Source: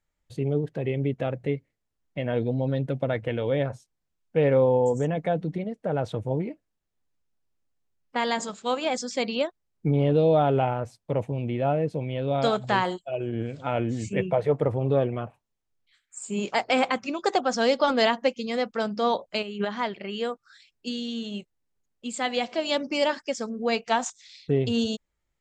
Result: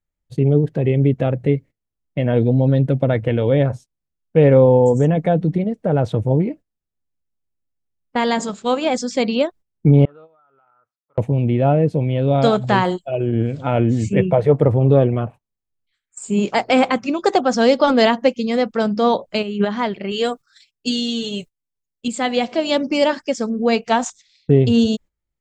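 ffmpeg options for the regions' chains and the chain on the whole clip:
ffmpeg -i in.wav -filter_complex "[0:a]asettb=1/sr,asplit=3[link_01][link_02][link_03];[link_01]atrim=end=10.054[link_04];[link_02]atrim=start=10.05:end=11.18,asetpts=PTS-STARTPTS,afade=type=in:duration=0.004:curve=qsin,afade=type=out:start_time=1.126:duration=0.004:curve=qsin,bandpass=frequency=1300:width_type=q:width=15,acompressor=threshold=-46dB:ratio=10:attack=3.2:release=140:knee=1:detection=peak[link_05];[link_03]atrim=start=11.176[link_06];[link_04][link_05]acrossfade=duration=0.004:curve1=hsin:curve2=qsin[link_07];[link_07][link_06]acrossfade=duration=0.004:curve1=qsin:curve2=hsin,asettb=1/sr,asplit=3[link_08][link_09][link_10];[link_08]atrim=end=20.114[link_11];[link_09]atrim=start=20.11:end=22.08,asetpts=PTS-STARTPTS,afade=type=in:duration=0.004:curve=qsin,afade=type=out:start_time=1.966:duration=0.004:curve=qsin,highshelf=frequency=3500:gain=11.5,aecho=1:1:7:0.58,atrim=end_sample=86877,agate=range=-9dB:threshold=-59dB:ratio=16:release=100:detection=peak[link_12];[link_10]atrim=start=22.076[link_13];[link_11][link_12]acrossfade=duration=0.004:curve1=hsin:curve2=qsin[link_14];[link_14][link_13]acrossfade=duration=0.004:curve1=qsin:curve2=hsin,agate=range=-14dB:threshold=-45dB:ratio=16:detection=peak,lowshelf=frequency=440:gain=8.5,volume=4.5dB" out.wav

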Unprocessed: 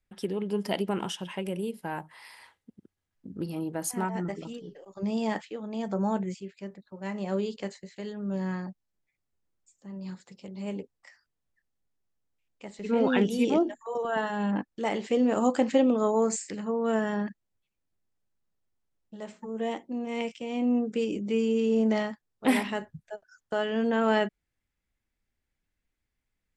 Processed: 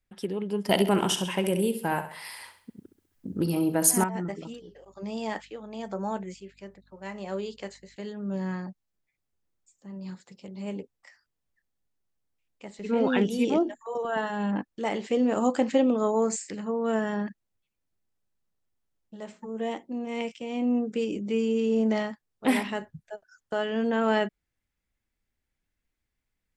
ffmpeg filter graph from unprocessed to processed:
ffmpeg -i in.wav -filter_complex "[0:a]asettb=1/sr,asplit=3[link_01][link_02][link_03];[link_01]atrim=end=0.694[link_04];[link_02]atrim=start=0.69:end=4.04,asetpts=PTS-STARTPTS,afade=type=in:duration=0.004:curve=qsin,afade=type=out:start_time=3.346:duration=0.004:curve=qsin,highshelf=frequency=8600:gain=11.5,acontrast=66,aecho=1:1:66|132|198|264|330:0.299|0.128|0.0552|0.0237|0.0102,atrim=end_sample=147735[link_05];[link_03]atrim=start=4.036[link_06];[link_04][link_05]acrossfade=duration=0.004:curve1=hsin:curve2=qsin[link_07];[link_07][link_06]acrossfade=duration=0.004:curve1=qsin:curve2=hsin,asettb=1/sr,asplit=3[link_08][link_09][link_10];[link_08]atrim=end=4.544[link_11];[link_09]atrim=start=4.54:end=7.96,asetpts=PTS-STARTPTS,afade=type=in:duration=0.004:curve=qsin,afade=type=out:start_time=3.416:duration=0.004:curve=qsin,lowshelf=frequency=230:gain=-11,aeval=exprs='val(0)+0.000708*(sin(2*PI*50*n/s)+sin(2*PI*2*50*n/s)/2+sin(2*PI*3*50*n/s)/3+sin(2*PI*4*50*n/s)/4+sin(2*PI*5*50*n/s)/5)':channel_layout=same[link_12];[link_10]atrim=start=7.956[link_13];[link_11][link_12]acrossfade=duration=0.004:curve1=hsin:curve2=qsin[link_14];[link_14][link_13]acrossfade=duration=0.004:curve1=qsin:curve2=hsin" out.wav

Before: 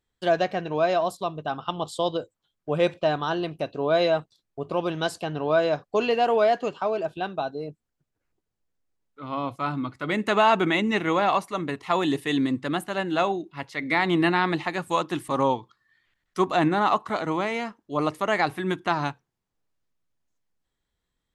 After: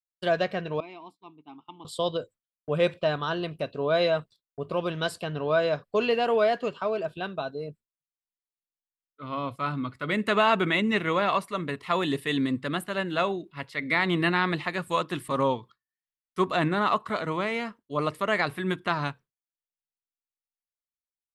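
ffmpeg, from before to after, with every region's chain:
ffmpeg -i in.wav -filter_complex "[0:a]asettb=1/sr,asplit=3[link_01][link_02][link_03];[link_01]atrim=end=0.804[link_04];[link_02]atrim=start=0.8:end=1.85,asetpts=PTS-STARTPTS,afade=type=in:duration=0.004:curve=qsin,afade=type=out:start_time=1.046:duration=0.004:curve=qsin,asplit=3[link_05][link_06][link_07];[link_05]bandpass=frequency=300:width_type=q:width=8,volume=0dB[link_08];[link_06]bandpass=frequency=870:width_type=q:width=8,volume=-6dB[link_09];[link_07]bandpass=frequency=2240:width_type=q:width=8,volume=-9dB[link_10];[link_08][link_09][link_10]amix=inputs=3:normalize=0,highshelf=frequency=2900:gain=8[link_11];[link_03]atrim=start=1.846[link_12];[link_04][link_11]acrossfade=duration=0.004:curve1=hsin:curve2=qsin[link_13];[link_13][link_12]acrossfade=duration=0.004:curve1=qsin:curve2=hsin,agate=range=-33dB:threshold=-41dB:ratio=3:detection=peak,equalizer=frequency=315:width_type=o:width=0.33:gain=-7,equalizer=frequency=800:width_type=o:width=0.33:gain=-10,equalizer=frequency=6300:width_type=o:width=0.33:gain=-9" out.wav

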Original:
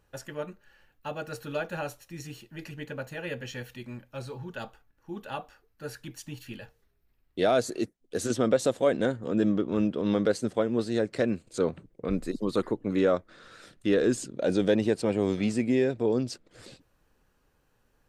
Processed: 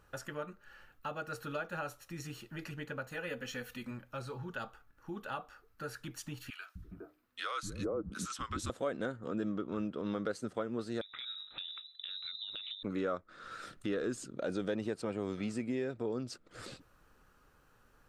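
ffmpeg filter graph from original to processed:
ffmpeg -i in.wav -filter_complex "[0:a]asettb=1/sr,asplit=3[link_01][link_02][link_03];[link_01]atrim=end=3.104[link_04];[link_02]atrim=start=3.1:end=3.91,asetpts=PTS-STARTPTS,afade=type=in:duration=0.004:curve=qsin,afade=type=out:start_time=0.806:duration=0.004:curve=qsin,highshelf=frequency=8200:gain=5.5,aecho=1:1:4:0.47,atrim=end_sample=35721[link_05];[link_03]atrim=start=3.906[link_06];[link_04][link_05]acrossfade=duration=0.004:curve1=hsin:curve2=qsin[link_07];[link_07][link_06]acrossfade=duration=0.004:curve1=qsin:curve2=hsin,asettb=1/sr,asplit=3[link_08][link_09][link_10];[link_08]atrim=end=6.504[link_11];[link_09]atrim=start=6.5:end=8.7,asetpts=PTS-STARTPTS,afade=type=in:duration=0.004:curve=qsin,afade=type=out:start_time=2.196:duration=0.004:curve=qsin,highpass=200,acrossover=split=310|1000[link_12][link_13][link_14];[link_12]adelay=250[link_15];[link_13]adelay=410[link_16];[link_15][link_16][link_14]amix=inputs=3:normalize=0,atrim=end_sample=97020,afreqshift=-160[link_17];[link_10]atrim=start=8.696[link_18];[link_11][link_17]acrossfade=duration=0.004:curve1=hsin:curve2=qsin[link_19];[link_19][link_18]acrossfade=duration=0.004:curve1=qsin:curve2=hsin,asettb=1/sr,asplit=3[link_20][link_21][link_22];[link_20]atrim=end=11.014[link_23];[link_21]atrim=start=11.01:end=12.83,asetpts=PTS-STARTPTS,afade=type=in:duration=0.004:curve=qsin,afade=type=out:start_time=1.816:duration=0.004:curve=qsin,bandreject=frequency=50:width_type=h:width=6,bandreject=frequency=100:width_type=h:width=6,bandreject=frequency=150:width_type=h:width=6,bandreject=frequency=200:width_type=h:width=6,bandreject=frequency=250:width_type=h:width=6,bandreject=frequency=300:width_type=h:width=6,bandreject=frequency=350:width_type=h:width=6,bandreject=frequency=400:width_type=h:width=6,bandreject=frequency=450:width_type=h:width=6,bandreject=frequency=500:width_type=h:width=6,lowpass=frequency=3400:width_type=q:width=0.5098,lowpass=frequency=3400:width_type=q:width=0.6013,lowpass=frequency=3400:width_type=q:width=0.9,lowpass=frequency=3400:width_type=q:width=2.563,afreqshift=-4000,acompressor=threshold=-35dB:ratio=16:attack=3.2:release=140:knee=1:detection=peak[link_24];[link_22]atrim=start=12.826[link_25];[link_23][link_24]acrossfade=duration=0.004:curve1=hsin:curve2=qsin[link_26];[link_26][link_25]acrossfade=duration=0.004:curve1=qsin:curve2=hsin,equalizer=frequency=1300:width_type=o:width=0.44:gain=10,acompressor=threshold=-46dB:ratio=2,volume=2dB" out.wav

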